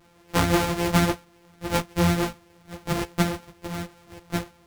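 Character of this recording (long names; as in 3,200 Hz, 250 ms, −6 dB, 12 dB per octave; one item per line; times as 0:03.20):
a buzz of ramps at a fixed pitch in blocks of 256 samples
a shimmering, thickened sound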